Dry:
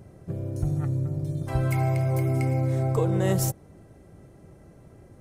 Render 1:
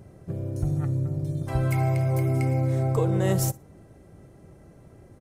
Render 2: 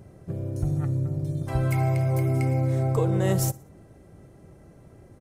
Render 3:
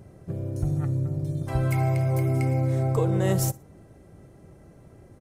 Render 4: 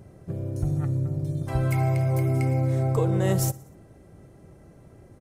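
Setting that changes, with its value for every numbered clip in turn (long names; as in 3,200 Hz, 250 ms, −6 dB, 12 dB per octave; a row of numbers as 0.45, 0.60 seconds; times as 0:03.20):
repeating echo, feedback: 17, 40, 26, 58%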